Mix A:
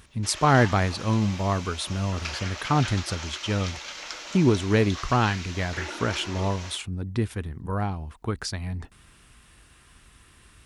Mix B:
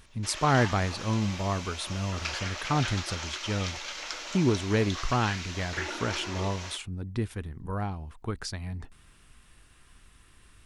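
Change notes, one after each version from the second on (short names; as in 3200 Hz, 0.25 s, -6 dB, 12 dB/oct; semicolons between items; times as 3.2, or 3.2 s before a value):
speech -4.5 dB; master: remove HPF 41 Hz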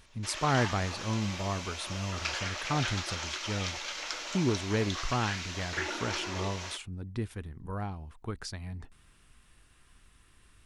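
speech -4.0 dB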